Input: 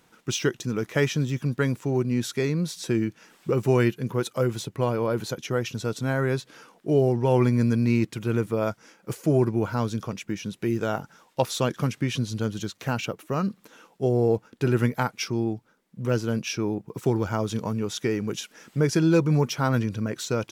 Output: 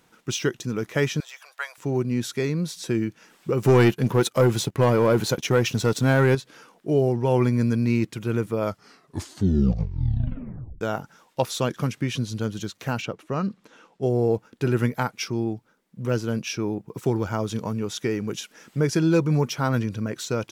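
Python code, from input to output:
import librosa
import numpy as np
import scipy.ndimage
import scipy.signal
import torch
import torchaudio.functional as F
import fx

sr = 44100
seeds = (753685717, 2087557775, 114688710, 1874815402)

y = fx.ellip_highpass(x, sr, hz=670.0, order=4, stop_db=60, at=(1.2, 1.78))
y = fx.leveller(y, sr, passes=2, at=(3.62, 6.35))
y = fx.air_absorb(y, sr, metres=59.0, at=(13.02, 14.03))
y = fx.edit(y, sr, fx.tape_stop(start_s=8.6, length_s=2.21), tone=tone)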